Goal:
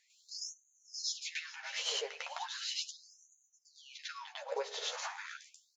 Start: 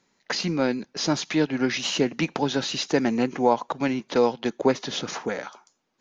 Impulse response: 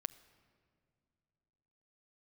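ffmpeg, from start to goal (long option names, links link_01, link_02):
-filter_complex "[0:a]equalizer=frequency=190:width_type=o:width=0.79:gain=12,acompressor=threshold=-46dB:ratio=2.5,asplit=2[link_01][link_02];[link_02]adelay=13,volume=-5dB[link_03];[link_01][link_03]amix=inputs=2:normalize=0,aecho=1:1:450:0.112,asplit=2[link_04][link_05];[1:a]atrim=start_sample=2205,adelay=104[link_06];[link_05][link_06]afir=irnorm=-1:irlink=0,volume=8.5dB[link_07];[link_04][link_07]amix=inputs=2:normalize=0,asetrate=45938,aresample=44100,afftfilt=real='re*gte(b*sr/1024,390*pow(6100/390,0.5+0.5*sin(2*PI*0.37*pts/sr)))':imag='im*gte(b*sr/1024,390*pow(6100/390,0.5+0.5*sin(2*PI*0.37*pts/sr)))':win_size=1024:overlap=0.75,volume=-2dB"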